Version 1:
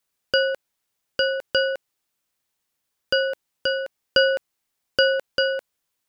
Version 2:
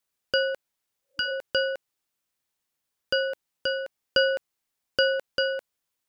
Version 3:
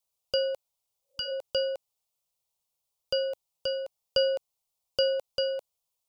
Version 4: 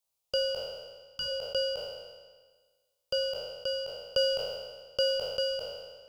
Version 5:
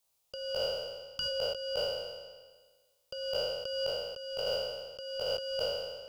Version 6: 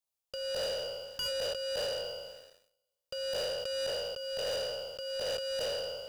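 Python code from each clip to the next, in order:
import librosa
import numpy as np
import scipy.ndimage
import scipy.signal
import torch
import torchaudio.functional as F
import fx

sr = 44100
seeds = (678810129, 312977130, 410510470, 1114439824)

y1 = fx.spec_repair(x, sr, seeds[0], start_s=0.99, length_s=0.29, low_hz=320.0, high_hz=900.0, source='both')
y1 = y1 * 10.0 ** (-4.0 / 20.0)
y2 = fx.fixed_phaser(y1, sr, hz=690.0, stages=4)
y3 = fx.spec_trails(y2, sr, decay_s=1.49)
y3 = y3 * 10.0 ** (-3.0 / 20.0)
y4 = fx.over_compress(y3, sr, threshold_db=-37.0, ratio=-1.0)
y4 = y4 * 10.0 ** (2.0 / 20.0)
y5 = fx.leveller(y4, sr, passes=3)
y5 = y5 * 10.0 ** (-8.0 / 20.0)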